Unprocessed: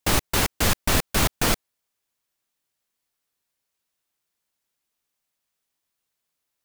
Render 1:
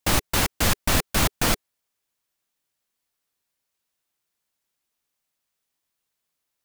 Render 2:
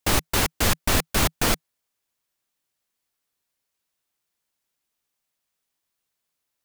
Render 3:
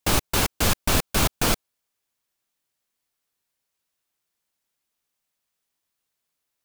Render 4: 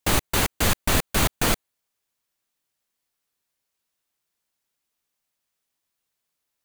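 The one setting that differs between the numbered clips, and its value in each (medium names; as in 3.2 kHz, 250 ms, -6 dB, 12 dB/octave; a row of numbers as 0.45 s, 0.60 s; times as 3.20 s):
dynamic bell, frequency: 410 Hz, 160 Hz, 1.9 kHz, 5.3 kHz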